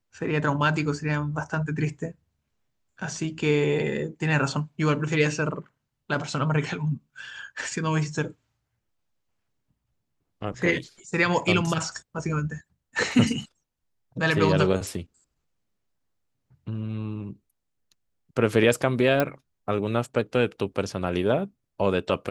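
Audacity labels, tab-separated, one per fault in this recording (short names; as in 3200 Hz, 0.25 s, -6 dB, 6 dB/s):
19.200000	19.200000	pop -10 dBFS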